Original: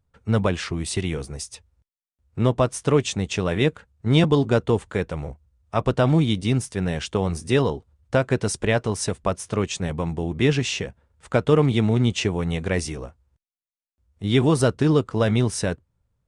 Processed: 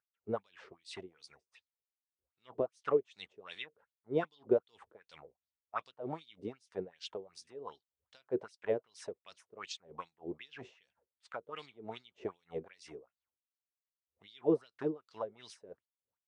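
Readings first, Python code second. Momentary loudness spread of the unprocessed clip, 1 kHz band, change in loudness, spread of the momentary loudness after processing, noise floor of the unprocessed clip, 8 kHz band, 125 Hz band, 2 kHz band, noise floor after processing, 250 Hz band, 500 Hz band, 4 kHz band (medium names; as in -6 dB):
12 LU, -16.0 dB, -17.0 dB, 22 LU, under -85 dBFS, -27.0 dB, -31.5 dB, -21.0 dB, under -85 dBFS, -20.0 dB, -14.0 dB, -20.5 dB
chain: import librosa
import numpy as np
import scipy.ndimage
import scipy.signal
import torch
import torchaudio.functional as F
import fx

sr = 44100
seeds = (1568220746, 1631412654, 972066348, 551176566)

y = fx.filter_lfo_bandpass(x, sr, shape='sine', hz=2.6, low_hz=390.0, high_hz=4600.0, q=4.7)
y = y * 10.0 ** (-23 * (0.5 - 0.5 * np.cos(2.0 * np.pi * 3.1 * np.arange(len(y)) / sr)) / 20.0)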